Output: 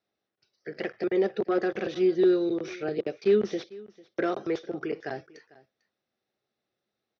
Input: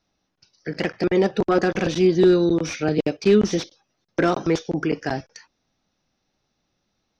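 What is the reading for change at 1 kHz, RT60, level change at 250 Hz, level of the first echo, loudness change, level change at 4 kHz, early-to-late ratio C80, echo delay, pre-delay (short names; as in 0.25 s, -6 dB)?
-9.0 dB, none, -8.0 dB, -21.5 dB, -6.5 dB, -11.5 dB, none, 0.448 s, none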